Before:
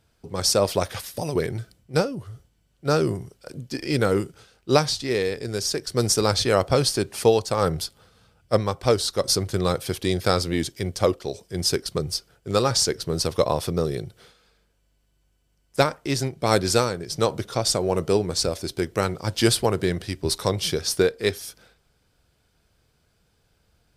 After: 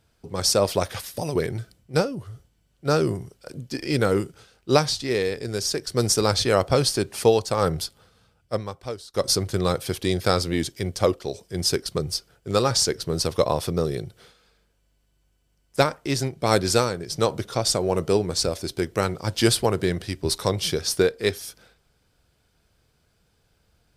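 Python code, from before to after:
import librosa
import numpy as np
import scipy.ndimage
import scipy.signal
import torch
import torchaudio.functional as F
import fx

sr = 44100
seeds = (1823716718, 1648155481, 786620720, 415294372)

y = fx.edit(x, sr, fx.fade_out_to(start_s=7.85, length_s=1.29, floor_db=-24.0), tone=tone)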